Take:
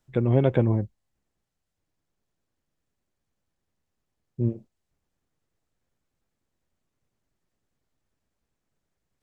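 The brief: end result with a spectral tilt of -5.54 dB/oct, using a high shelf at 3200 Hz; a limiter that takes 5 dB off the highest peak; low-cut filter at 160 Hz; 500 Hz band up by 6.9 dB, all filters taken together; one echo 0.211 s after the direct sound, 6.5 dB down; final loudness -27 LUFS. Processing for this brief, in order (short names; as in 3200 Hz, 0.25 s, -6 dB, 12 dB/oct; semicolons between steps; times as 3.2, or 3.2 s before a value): HPF 160 Hz; bell 500 Hz +8.5 dB; high shelf 3200 Hz -6.5 dB; limiter -8.5 dBFS; echo 0.211 s -6.5 dB; gain -3.5 dB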